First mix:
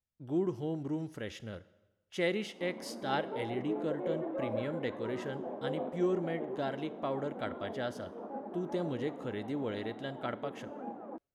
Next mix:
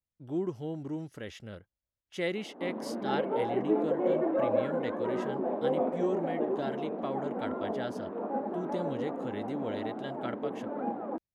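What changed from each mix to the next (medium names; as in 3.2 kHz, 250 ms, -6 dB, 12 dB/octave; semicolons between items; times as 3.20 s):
background +8.5 dB; reverb: off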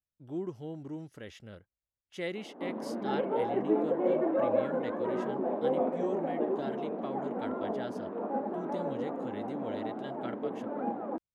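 speech -4.0 dB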